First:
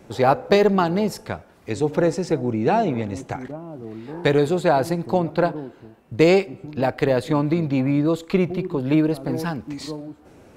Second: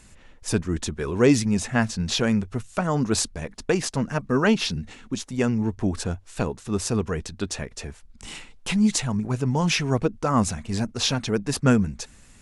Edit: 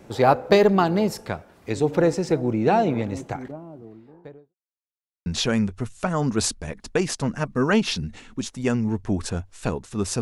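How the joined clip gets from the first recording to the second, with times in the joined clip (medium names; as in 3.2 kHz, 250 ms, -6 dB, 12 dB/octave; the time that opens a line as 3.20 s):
first
3.00–4.55 s: studio fade out
4.55–5.26 s: mute
5.26 s: go over to second from 2.00 s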